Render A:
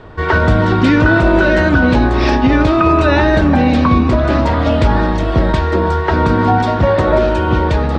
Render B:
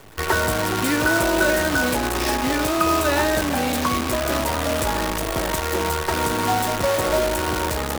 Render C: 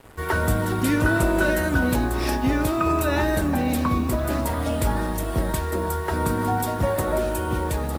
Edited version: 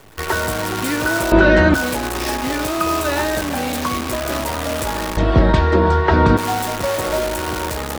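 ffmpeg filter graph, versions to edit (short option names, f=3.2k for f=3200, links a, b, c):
-filter_complex "[0:a]asplit=2[a][b];[1:a]asplit=3[c][d][e];[c]atrim=end=1.322[f];[a]atrim=start=1.318:end=1.742[g];[d]atrim=start=1.738:end=5.172[h];[b]atrim=start=5.168:end=6.372[i];[e]atrim=start=6.368[j];[f][g]acrossfade=d=0.004:c1=hsin:c2=hsin[k];[k][h]acrossfade=d=0.004:c1=hsin:c2=hsin[l];[l][i]acrossfade=d=0.004:c1=hsin:c2=hsin[m];[m][j]acrossfade=d=0.004:c1=hsin:c2=hsin"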